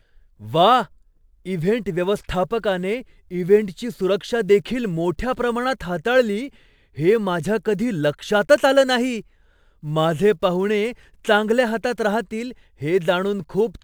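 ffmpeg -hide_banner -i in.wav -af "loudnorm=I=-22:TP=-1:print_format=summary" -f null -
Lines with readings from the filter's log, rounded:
Input Integrated:    -20.8 LUFS
Input True Peak:      -1.5 dBTP
Input LRA:             2.4 LU
Input Threshold:     -31.3 LUFS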